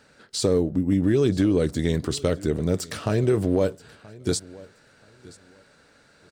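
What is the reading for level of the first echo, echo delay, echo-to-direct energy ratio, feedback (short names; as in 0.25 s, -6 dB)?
-21.5 dB, 0.978 s, -21.5 dB, 22%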